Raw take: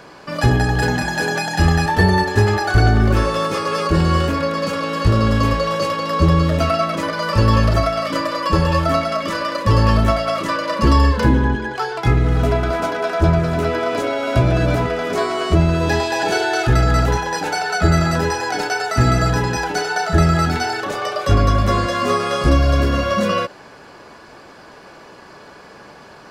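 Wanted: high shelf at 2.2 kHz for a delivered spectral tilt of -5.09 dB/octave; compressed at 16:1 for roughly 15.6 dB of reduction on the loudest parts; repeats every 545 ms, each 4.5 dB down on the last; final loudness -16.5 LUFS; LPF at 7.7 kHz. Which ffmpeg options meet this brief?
-af "lowpass=7700,highshelf=f=2200:g=-5.5,acompressor=threshold=0.0562:ratio=16,aecho=1:1:545|1090|1635|2180|2725|3270|3815|4360|4905:0.596|0.357|0.214|0.129|0.0772|0.0463|0.0278|0.0167|0.01,volume=3.76"

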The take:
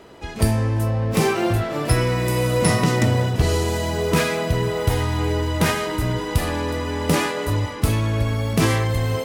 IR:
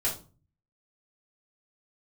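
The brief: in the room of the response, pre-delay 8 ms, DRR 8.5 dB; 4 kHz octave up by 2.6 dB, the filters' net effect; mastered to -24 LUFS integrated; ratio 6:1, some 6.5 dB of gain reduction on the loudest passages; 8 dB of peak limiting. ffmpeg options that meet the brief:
-filter_complex "[0:a]equalizer=f=4000:t=o:g=3.5,acompressor=threshold=0.1:ratio=6,alimiter=limit=0.126:level=0:latency=1,asplit=2[s0][s1];[1:a]atrim=start_sample=2205,adelay=8[s2];[s1][s2]afir=irnorm=-1:irlink=0,volume=0.168[s3];[s0][s3]amix=inputs=2:normalize=0,volume=1.33"

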